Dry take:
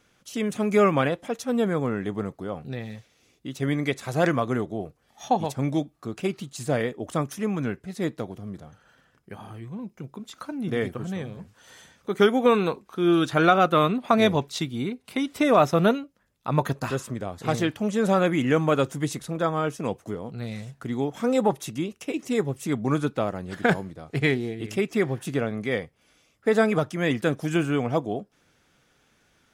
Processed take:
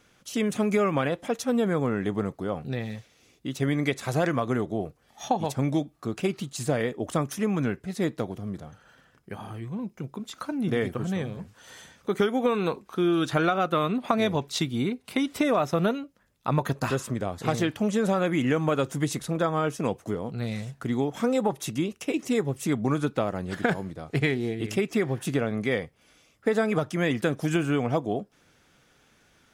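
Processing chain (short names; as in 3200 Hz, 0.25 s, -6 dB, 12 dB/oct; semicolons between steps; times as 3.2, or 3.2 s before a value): compressor 6:1, threshold -23 dBFS, peak gain reduction 10.5 dB; gain +2.5 dB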